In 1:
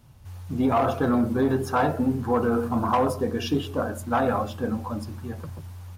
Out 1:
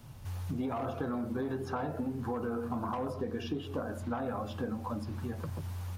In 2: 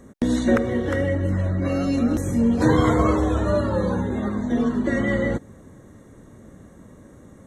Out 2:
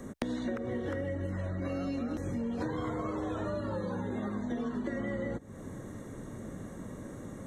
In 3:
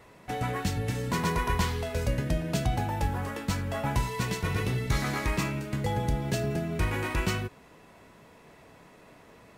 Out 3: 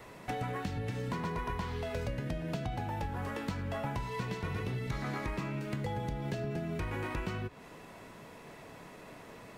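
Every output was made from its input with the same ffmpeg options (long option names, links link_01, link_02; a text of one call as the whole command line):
ffmpeg -i in.wav -filter_complex "[0:a]acrossover=split=420|1500|4900[link_01][link_02][link_03][link_04];[link_01]acompressor=threshold=-24dB:ratio=4[link_05];[link_02]acompressor=threshold=-28dB:ratio=4[link_06];[link_03]acompressor=threshold=-41dB:ratio=4[link_07];[link_04]acompressor=threshold=-58dB:ratio=4[link_08];[link_05][link_06][link_07][link_08]amix=inputs=4:normalize=0,equalizer=frequency=68:width=6.6:gain=-15,acompressor=threshold=-38dB:ratio=4,volume=3.5dB" out.wav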